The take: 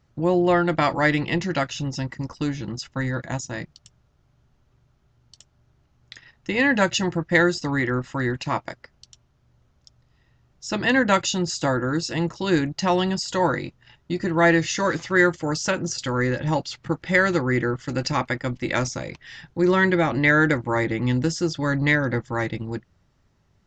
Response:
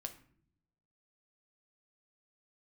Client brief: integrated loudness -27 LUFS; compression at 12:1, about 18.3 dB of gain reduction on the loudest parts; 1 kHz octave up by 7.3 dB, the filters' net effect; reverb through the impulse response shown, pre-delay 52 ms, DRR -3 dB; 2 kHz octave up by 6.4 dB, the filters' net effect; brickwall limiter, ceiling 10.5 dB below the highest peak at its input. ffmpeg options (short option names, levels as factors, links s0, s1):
-filter_complex "[0:a]equalizer=f=1000:t=o:g=8,equalizer=f=2000:t=o:g=5,acompressor=threshold=0.0447:ratio=12,alimiter=level_in=1.12:limit=0.0631:level=0:latency=1,volume=0.891,asplit=2[s0][s1];[1:a]atrim=start_sample=2205,adelay=52[s2];[s1][s2]afir=irnorm=-1:irlink=0,volume=2[s3];[s0][s3]amix=inputs=2:normalize=0,volume=1.41"